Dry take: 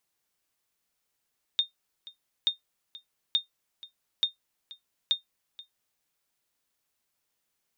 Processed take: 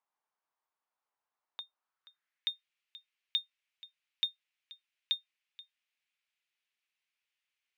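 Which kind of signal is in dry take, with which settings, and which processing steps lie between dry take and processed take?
ping with an echo 3,660 Hz, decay 0.13 s, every 0.88 s, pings 5, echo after 0.48 s, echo −20 dB −15.5 dBFS
band-pass filter sweep 950 Hz → 2,500 Hz, 0:01.74–0:02.60
in parallel at −10 dB: floating-point word with a short mantissa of 2 bits

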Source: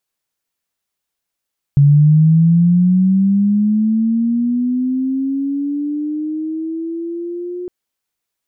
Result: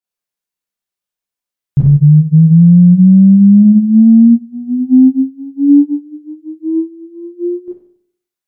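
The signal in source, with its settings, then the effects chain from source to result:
glide linear 140 Hz → 360 Hz −5.5 dBFS → −22.5 dBFS 5.91 s
four-comb reverb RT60 0.64 s, combs from 31 ms, DRR −7.5 dB
boost into a limiter +4 dB
expander for the loud parts 2.5 to 1, over −16 dBFS

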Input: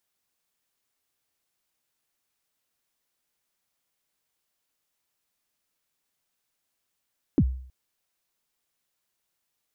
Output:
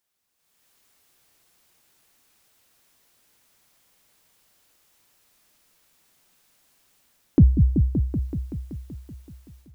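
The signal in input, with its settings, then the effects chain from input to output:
synth kick length 0.32 s, from 350 Hz, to 64 Hz, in 58 ms, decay 0.56 s, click off, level −13.5 dB
automatic gain control gain up to 16 dB
transient designer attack −7 dB, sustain −2 dB
on a send: echo whose low-pass opens from repeat to repeat 190 ms, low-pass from 200 Hz, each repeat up 1 octave, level −3 dB

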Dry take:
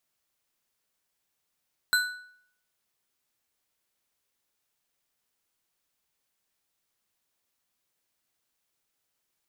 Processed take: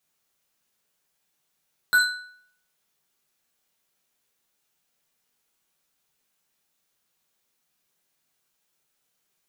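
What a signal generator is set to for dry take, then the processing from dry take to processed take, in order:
struck metal bar, lowest mode 1,480 Hz, modes 4, decay 0.64 s, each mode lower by 4.5 dB, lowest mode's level −19 dB
reverb whose tail is shaped and stops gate 130 ms falling, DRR −2.5 dB

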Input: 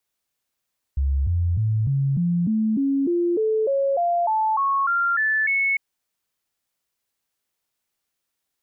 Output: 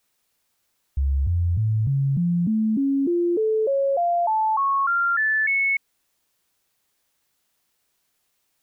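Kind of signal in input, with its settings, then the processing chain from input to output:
stepped sweep 68.8 Hz up, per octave 3, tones 16, 0.30 s, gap 0.00 s −18 dBFS
bit-depth reduction 12 bits, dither triangular

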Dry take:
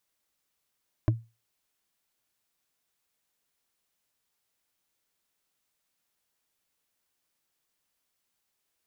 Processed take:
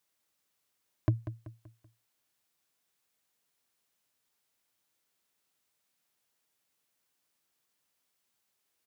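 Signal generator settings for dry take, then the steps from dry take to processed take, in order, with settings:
struck wood, lowest mode 114 Hz, decay 0.27 s, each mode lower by 4.5 dB, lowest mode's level −16.5 dB
high-pass filter 76 Hz
repeating echo 191 ms, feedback 41%, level −12 dB

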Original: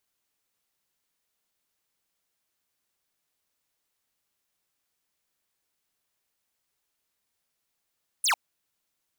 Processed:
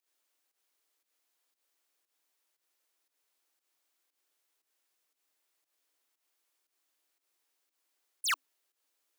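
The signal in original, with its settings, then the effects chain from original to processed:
single falling chirp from 11,000 Hz, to 730 Hz, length 0.10 s square, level −23 dB
brickwall limiter −27.5 dBFS
fake sidechain pumping 117 BPM, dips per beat 1, −13 dB, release 136 ms
frequency shifter +270 Hz

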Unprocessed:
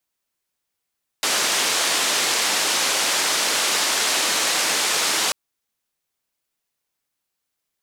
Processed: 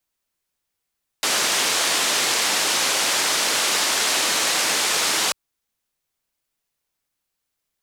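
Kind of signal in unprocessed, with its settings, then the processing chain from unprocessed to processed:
band-limited noise 320–7,300 Hz, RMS −21 dBFS 4.09 s
low-shelf EQ 73 Hz +8.5 dB

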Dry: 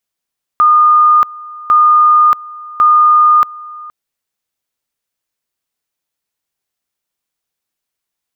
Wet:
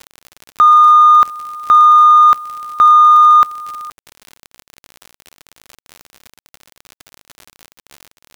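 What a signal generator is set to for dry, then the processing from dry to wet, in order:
tone at two levels in turn 1,220 Hz −4.5 dBFS, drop 22 dB, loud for 0.63 s, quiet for 0.47 s, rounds 3
surface crackle 62 per second −23 dBFS
in parallel at −12 dB: gain into a clipping stage and back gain 11.5 dB
on the sum: bit reduction 8 bits

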